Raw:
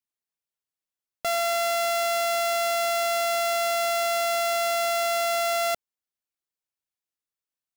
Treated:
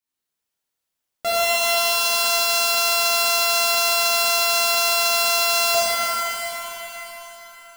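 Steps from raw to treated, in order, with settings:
reverb with rising layers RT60 3.6 s, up +7 semitones, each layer −8 dB, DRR −10 dB

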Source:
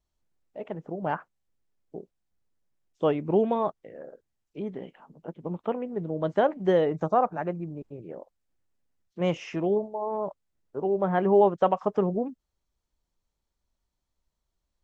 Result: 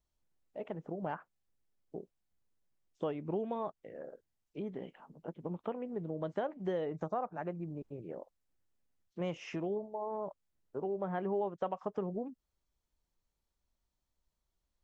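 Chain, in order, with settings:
downward compressor 2.5 to 1, threshold −33 dBFS, peak gain reduction 12 dB
level −3.5 dB

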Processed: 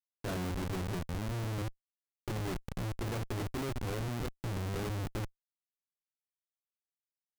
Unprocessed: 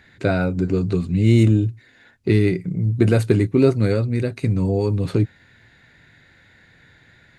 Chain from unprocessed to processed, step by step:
hold until the input has moved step −18.5 dBFS
dynamic equaliser 270 Hz, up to −5 dB, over −29 dBFS, Q 1.1
reversed playback
downward compressor 8 to 1, threshold −26 dBFS, peak gain reduction 14.5 dB
reversed playback
high-shelf EQ 2,600 Hz +8.5 dB
comparator with hysteresis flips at −25 dBFS
level −6 dB

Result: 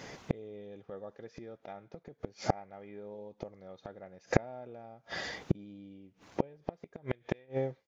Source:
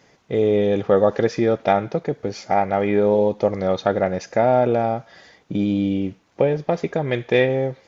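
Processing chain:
fade-out on the ending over 2.20 s
gate with flip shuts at −21 dBFS, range −37 dB
level +8.5 dB

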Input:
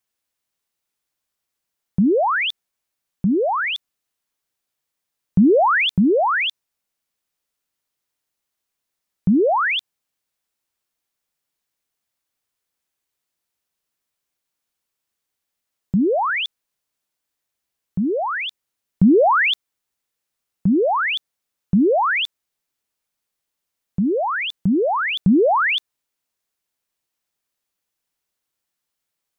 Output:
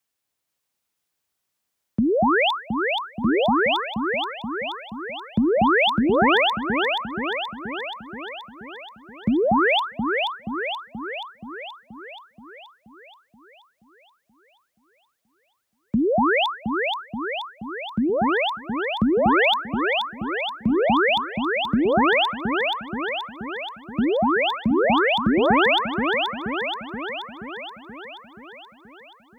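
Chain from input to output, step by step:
downward compressor, threshold −18 dBFS, peak gain reduction 8 dB
frequency shifter +34 Hz
delay that swaps between a low-pass and a high-pass 239 ms, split 1,100 Hz, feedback 79%, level −2 dB

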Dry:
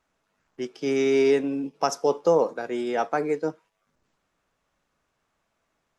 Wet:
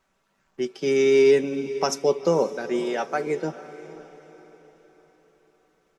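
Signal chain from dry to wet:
0:02.79–0:03.27: low-shelf EQ 240 Hz −11.5 dB
comb filter 5.2 ms, depth 47%
dynamic equaliser 960 Hz, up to −6 dB, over −36 dBFS, Q 0.81
feedback delay with all-pass diffusion 486 ms, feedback 45%, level −15 dB
level +3 dB

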